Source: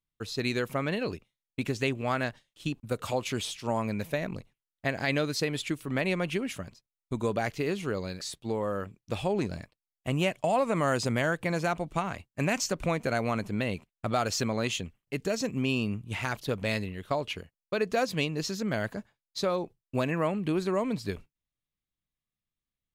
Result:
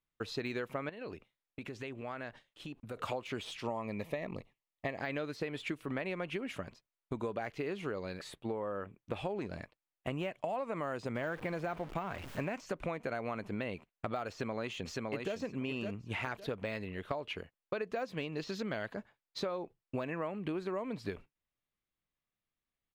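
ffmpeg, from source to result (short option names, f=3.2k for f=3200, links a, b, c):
-filter_complex "[0:a]asettb=1/sr,asplit=3[a][b][c];[a]atrim=end=0.894[d];[b]atrim=start=0.89:end=2.97,asetpts=PTS-STARTPTS,afade=t=in:d=0.004:c=qsin,afade=t=out:st=2.076:d=0.004:c=qsin,acompressor=threshold=-41dB:ratio=5:attack=3.2:release=140:knee=1:detection=peak[e];[c]atrim=start=2.966[f];[d][e]acrossfade=d=0.004:c1=hsin:c2=qsin[g];[g][f]acrossfade=d=0.004:c1=qsin:c2=hsin,asettb=1/sr,asplit=3[h][i][j];[h]atrim=end=3.654[k];[i]atrim=start=3.65:end=5.01,asetpts=PTS-STARTPTS,afade=t=in:d=0.004:c=qsin,afade=t=out:st=1.356:d=0.004:c=qsin,asuperstop=centerf=1500:order=4:qfactor=4.1[l];[j]atrim=start=5.006[m];[k][l]acrossfade=d=0.004:c1=hsin:c2=qsin[n];[n][m]acrossfade=d=0.004:c1=qsin:c2=hsin,asettb=1/sr,asplit=3[o][p][q];[o]atrim=end=8.204[r];[p]atrim=start=8.2:end=9.16,asetpts=PTS-STARTPTS,afade=t=in:d=0.004:c=qsin,afade=t=out:st=0.956:d=0.004:c=qsin,equalizer=f=5.4k:t=o:w=0.98:g=-10[s];[q]atrim=start=9.156[t];[r][s]acrossfade=d=0.004:c1=hsin:c2=qsin[u];[u][t]acrossfade=d=0.004:c1=qsin:c2=hsin,asettb=1/sr,asplit=3[v][w][x];[v]atrim=end=11.154[y];[w]atrim=start=11.15:end=12.55,asetpts=PTS-STARTPTS,afade=t=in:d=0.004:c=qsin,afade=t=out:st=1.396:d=0.004:c=qsin,aeval=exprs='val(0)+0.5*0.0178*sgn(val(0))':c=same[z];[x]atrim=start=12.546[aa];[y][z]acrossfade=d=0.004:c1=hsin:c2=qsin[ab];[ab][aa]acrossfade=d=0.004:c1=qsin:c2=hsin,asplit=2[ac][ad];[ad]afade=t=in:st=14.29:d=0.01,afade=t=out:st=15.34:d=0.01,aecho=0:1:560|1120|1680:0.473151|0.0946303|0.0189261[ae];[ac][ae]amix=inputs=2:normalize=0,asettb=1/sr,asplit=3[af][ag][ah];[af]atrim=end=18.324[ai];[ag]atrim=start=18.32:end=18.94,asetpts=PTS-STARTPTS,afade=t=in:d=0.004:c=qsin,afade=t=out:st=0.616:d=0.004:c=qsin,equalizer=f=3.7k:t=o:w=1.1:g=7.5[aj];[ah]atrim=start=18.936[ak];[ai][aj]acrossfade=d=0.004:c1=hsin:c2=qsin[al];[al][ak]acrossfade=d=0.004:c1=qsin:c2=hsin,deesser=0.85,bass=f=250:g=-7,treble=f=4k:g=-13,acompressor=threshold=-38dB:ratio=6,volume=3.5dB"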